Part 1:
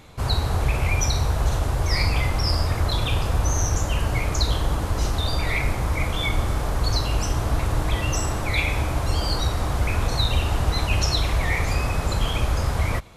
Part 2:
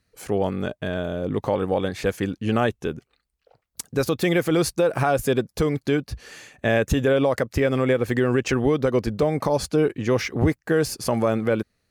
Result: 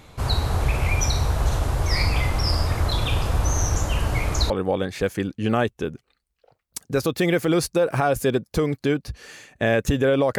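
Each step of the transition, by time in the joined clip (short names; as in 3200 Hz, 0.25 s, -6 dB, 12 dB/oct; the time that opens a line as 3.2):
part 1
4.5 switch to part 2 from 1.53 s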